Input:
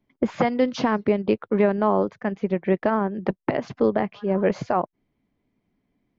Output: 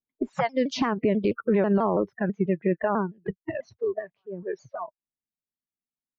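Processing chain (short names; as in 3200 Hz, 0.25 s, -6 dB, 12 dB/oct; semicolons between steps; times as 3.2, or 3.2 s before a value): Doppler pass-by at 1.67, 11 m/s, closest 6.9 m; spectral noise reduction 25 dB; limiter -21 dBFS, peak gain reduction 11.5 dB; shaped vibrato saw down 6.1 Hz, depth 160 cents; gain +7 dB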